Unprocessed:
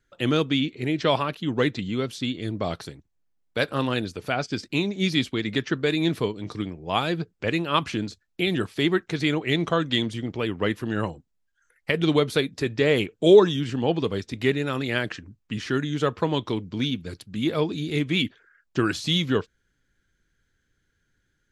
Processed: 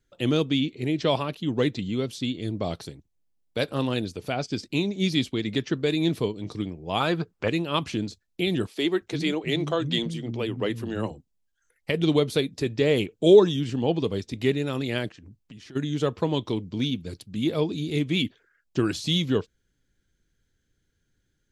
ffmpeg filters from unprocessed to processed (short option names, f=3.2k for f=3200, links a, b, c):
-filter_complex "[0:a]asettb=1/sr,asplit=3[a][b][c];[a]atrim=end=7.004[d];[b]atrim=start=7:end=7.48,asetpts=PTS-STARTPTS,afade=t=in:d=0.004:c=qsin,afade=t=out:st=0.476:d=0.004:c=qsin,equalizer=f=1.2k:t=o:w=1.4:g=13[e];[c]atrim=start=7.476[f];[d][e]acrossfade=d=0.004:c1=hsin:c2=qsin[g];[g][f]acrossfade=d=0.004:c1=qsin:c2=hsin,asettb=1/sr,asplit=3[h][i][j];[h]atrim=end=8.674[k];[i]atrim=start=8.67:end=11.11,asetpts=PTS-STARTPTS,afade=t=in:d=0.004:c=qsin,afade=t=out:st=2.436:d=0.004:c=qsin,acrossover=split=210[l][m];[l]adelay=340[n];[n][m]amix=inputs=2:normalize=0,atrim=end_sample=107604[o];[j]atrim=start=11.106[p];[k][o]acrossfade=d=0.004:c1=hsin:c2=qsin[q];[q][p]acrossfade=d=0.004:c1=qsin:c2=hsin,asplit=3[r][s][t];[r]afade=t=out:st=15.09:d=0.02[u];[s]acompressor=threshold=-41dB:ratio=8:attack=3.2:release=140:knee=1:detection=peak,afade=t=in:st=15.09:d=0.02,afade=t=out:st=15.75:d=0.02[v];[t]afade=t=in:st=15.75:d=0.02[w];[u][v][w]amix=inputs=3:normalize=0,equalizer=f=1.5k:t=o:w=1.3:g=-8"